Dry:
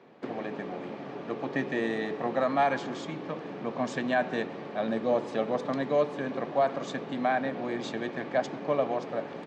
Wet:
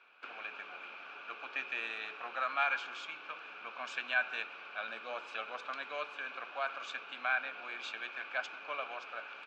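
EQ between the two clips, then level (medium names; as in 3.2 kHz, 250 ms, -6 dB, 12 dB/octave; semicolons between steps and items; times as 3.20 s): two resonant band-passes 1.9 kHz, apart 0.77 oct; tilt EQ +3 dB/octave; +5.5 dB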